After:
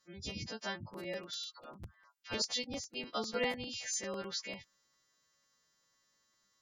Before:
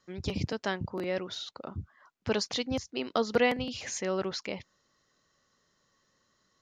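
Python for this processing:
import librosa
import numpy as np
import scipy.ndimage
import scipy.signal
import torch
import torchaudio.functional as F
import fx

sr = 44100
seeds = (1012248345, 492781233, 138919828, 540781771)

y = fx.freq_snap(x, sr, grid_st=2)
y = fx.peak_eq(y, sr, hz=410.0, db=-4.5, octaves=0.22)
y = fx.spec_gate(y, sr, threshold_db=-25, keep='strong')
y = fx.dispersion(y, sr, late='lows', ms=53.0, hz=820.0, at=(1.31, 2.42))
y = fx.buffer_crackle(y, sr, first_s=0.93, period_s=0.1, block=256, kind='repeat')
y = y * 10.0 ** (-8.5 / 20.0)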